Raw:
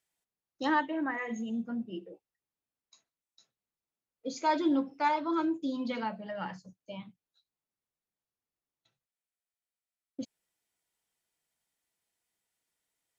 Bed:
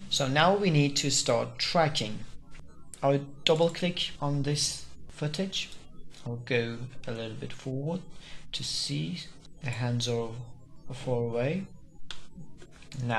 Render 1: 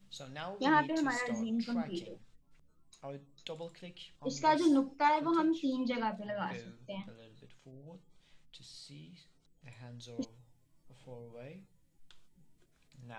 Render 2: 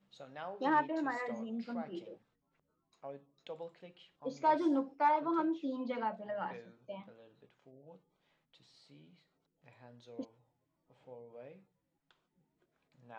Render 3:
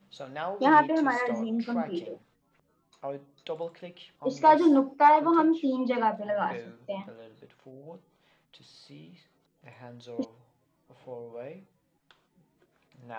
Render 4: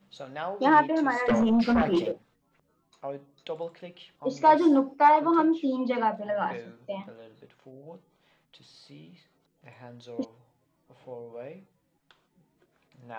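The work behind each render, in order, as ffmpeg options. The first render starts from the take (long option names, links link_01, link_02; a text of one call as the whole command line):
ffmpeg -i in.wav -i bed.wav -filter_complex "[1:a]volume=-20dB[link_01];[0:a][link_01]amix=inputs=2:normalize=0" out.wav
ffmpeg -i in.wav -af "asoftclip=type=hard:threshold=-19.5dB,bandpass=frequency=700:width_type=q:width=0.66:csg=0" out.wav
ffmpeg -i in.wav -af "volume=10.5dB" out.wav
ffmpeg -i in.wav -filter_complex "[0:a]asettb=1/sr,asplit=3[link_01][link_02][link_03];[link_01]atrim=end=1.284[link_04];[link_02]atrim=start=1.28:end=2.12,asetpts=PTS-STARTPTS,afade=type=in:duration=0.004:curve=qsin,afade=type=out:start_time=0.836:duration=0.004:curve=qsin,aeval=exprs='0.119*sin(PI/2*2.24*val(0)/0.119)':channel_layout=same[link_05];[link_03]atrim=start=2.116[link_06];[link_04][link_05]acrossfade=duration=0.004:curve1=hsin:curve2=qsin[link_07];[link_07][link_06]acrossfade=duration=0.004:curve1=qsin:curve2=hsin" out.wav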